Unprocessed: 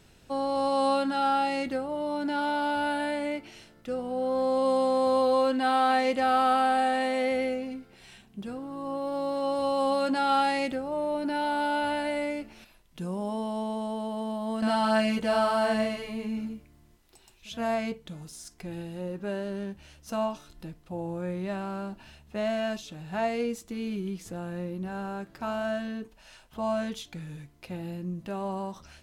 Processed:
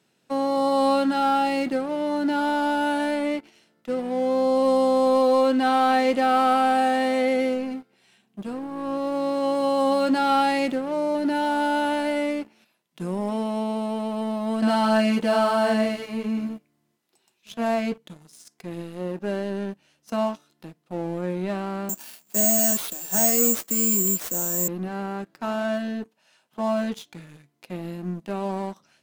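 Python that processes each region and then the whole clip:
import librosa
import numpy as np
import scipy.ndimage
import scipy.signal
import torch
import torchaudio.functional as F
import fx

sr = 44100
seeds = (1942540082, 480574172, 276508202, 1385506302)

y = fx.chain(x, sr, fx.steep_highpass(hz=160.0, slope=36),
    fx.high_shelf(hz=4800.0, db=4.5),
    fx.resample_bad(factor=6, down='none', up='zero_stuff'), at=(21.89, 24.68))
y = scipy.signal.sosfilt(scipy.signal.butter(4, 150.0, 'highpass', fs=sr, output='sos'), y)
y = fx.dynamic_eq(y, sr, hz=290.0, q=0.92, threshold_db=-40.0, ratio=4.0, max_db=4)
y = fx.leveller(y, sr, passes=2)
y = y * librosa.db_to_amplitude(-4.5)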